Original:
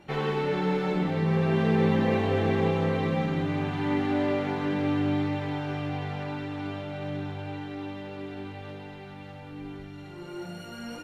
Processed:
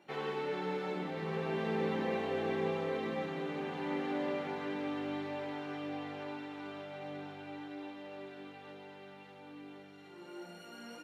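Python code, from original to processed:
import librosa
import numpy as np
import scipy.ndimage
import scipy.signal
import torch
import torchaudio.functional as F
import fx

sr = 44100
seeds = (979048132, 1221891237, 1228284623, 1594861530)

y = scipy.signal.sosfilt(scipy.signal.butter(2, 260.0, 'highpass', fs=sr, output='sos'), x)
y = y + 10.0 ** (-10.0 / 20.0) * np.pad(y, (int(1090 * sr / 1000.0), 0))[:len(y)]
y = F.gain(torch.from_numpy(y), -8.0).numpy()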